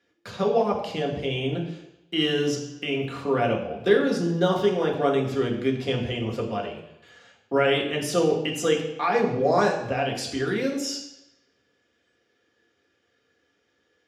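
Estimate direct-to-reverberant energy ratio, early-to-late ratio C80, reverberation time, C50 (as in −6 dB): −1.0 dB, 9.5 dB, 0.85 s, 7.0 dB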